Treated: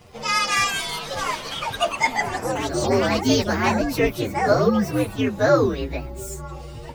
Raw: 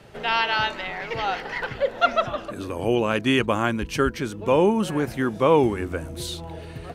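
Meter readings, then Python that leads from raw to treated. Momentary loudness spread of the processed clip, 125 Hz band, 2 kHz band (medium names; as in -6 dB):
12 LU, +2.5 dB, +2.0 dB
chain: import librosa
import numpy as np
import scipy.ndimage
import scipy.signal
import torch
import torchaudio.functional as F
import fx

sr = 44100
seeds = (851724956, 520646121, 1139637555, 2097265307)

y = fx.partial_stretch(x, sr, pct=125)
y = fx.echo_pitch(y, sr, ms=299, semitones=5, count=2, db_per_echo=-6.0)
y = y * librosa.db_to_amplitude(3.5)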